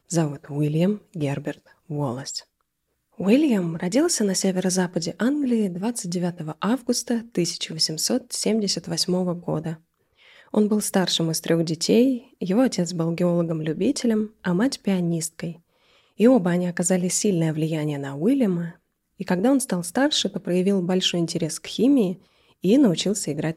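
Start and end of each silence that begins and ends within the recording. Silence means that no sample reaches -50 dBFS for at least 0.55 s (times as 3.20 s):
2.44–3.15 s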